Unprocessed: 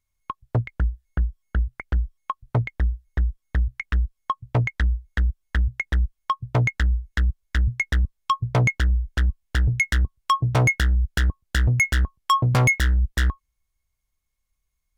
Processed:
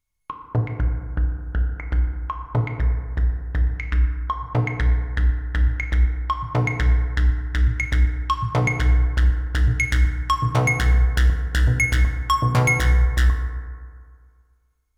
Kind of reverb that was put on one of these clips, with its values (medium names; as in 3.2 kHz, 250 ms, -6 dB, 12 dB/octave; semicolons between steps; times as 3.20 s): FDN reverb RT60 2 s, low-frequency decay 0.9×, high-frequency decay 0.35×, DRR 2.5 dB; trim -1 dB